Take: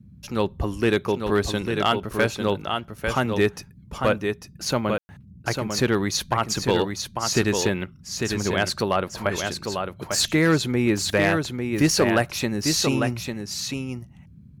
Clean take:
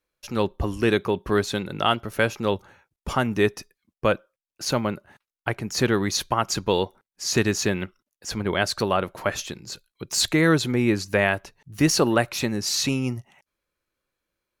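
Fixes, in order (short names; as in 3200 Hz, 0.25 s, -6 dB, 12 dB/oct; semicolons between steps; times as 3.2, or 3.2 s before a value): clip repair -11 dBFS; room tone fill 4.98–5.09; noise print and reduce 30 dB; inverse comb 0.848 s -5.5 dB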